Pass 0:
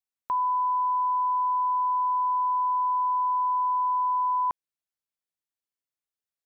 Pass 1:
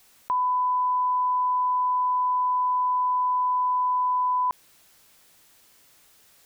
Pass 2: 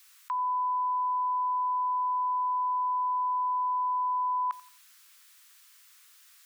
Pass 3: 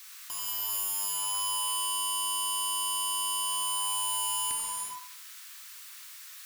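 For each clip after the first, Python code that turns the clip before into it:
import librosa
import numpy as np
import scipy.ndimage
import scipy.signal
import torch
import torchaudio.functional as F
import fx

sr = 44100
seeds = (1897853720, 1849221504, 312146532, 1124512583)

y1 = fx.env_flatten(x, sr, amount_pct=50)
y1 = y1 * 10.0 ** (1.5 / 20.0)
y2 = scipy.signal.sosfilt(scipy.signal.butter(6, 1100.0, 'highpass', fs=sr, output='sos'), y1)
y2 = fx.echo_feedback(y2, sr, ms=88, feedback_pct=35, wet_db=-20)
y3 = fx.rider(y2, sr, range_db=5, speed_s=2.0)
y3 = (np.mod(10.0 ** (36.5 / 20.0) * y3 + 1.0, 2.0) - 1.0) / 10.0 ** (36.5 / 20.0)
y3 = fx.rev_gated(y3, sr, seeds[0], gate_ms=460, shape='flat', drr_db=-2.5)
y3 = y3 * 10.0 ** (5.5 / 20.0)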